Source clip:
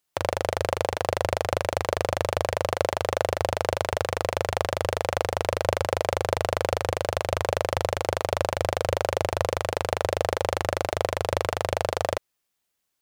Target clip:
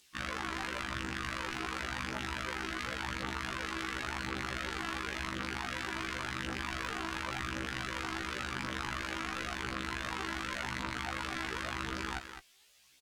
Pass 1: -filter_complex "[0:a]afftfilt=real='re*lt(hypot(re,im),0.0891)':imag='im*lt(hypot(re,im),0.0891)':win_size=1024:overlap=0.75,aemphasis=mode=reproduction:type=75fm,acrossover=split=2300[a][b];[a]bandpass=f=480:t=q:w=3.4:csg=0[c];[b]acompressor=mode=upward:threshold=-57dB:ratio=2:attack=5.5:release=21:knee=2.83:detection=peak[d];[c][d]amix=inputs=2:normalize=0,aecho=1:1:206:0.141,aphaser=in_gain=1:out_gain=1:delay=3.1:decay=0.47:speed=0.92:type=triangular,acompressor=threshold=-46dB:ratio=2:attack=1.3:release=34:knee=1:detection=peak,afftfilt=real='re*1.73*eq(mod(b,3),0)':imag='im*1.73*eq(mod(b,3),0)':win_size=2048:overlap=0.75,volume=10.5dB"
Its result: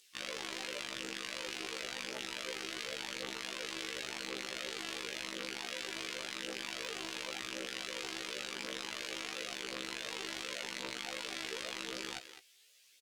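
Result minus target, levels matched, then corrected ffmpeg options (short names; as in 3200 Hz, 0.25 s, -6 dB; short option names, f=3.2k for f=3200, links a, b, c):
500 Hz band +2.5 dB
-filter_complex "[0:a]afftfilt=real='re*lt(hypot(re,im),0.0891)':imag='im*lt(hypot(re,im),0.0891)':win_size=1024:overlap=0.75,aemphasis=mode=reproduction:type=75fm,acrossover=split=2300[a][b];[b]acompressor=mode=upward:threshold=-57dB:ratio=2:attack=5.5:release=21:knee=2.83:detection=peak[c];[a][c]amix=inputs=2:normalize=0,aecho=1:1:206:0.141,aphaser=in_gain=1:out_gain=1:delay=3.1:decay=0.47:speed=0.92:type=triangular,acompressor=threshold=-46dB:ratio=2:attack=1.3:release=34:knee=1:detection=peak,afftfilt=real='re*1.73*eq(mod(b,3),0)':imag='im*1.73*eq(mod(b,3),0)':win_size=2048:overlap=0.75,volume=10.5dB"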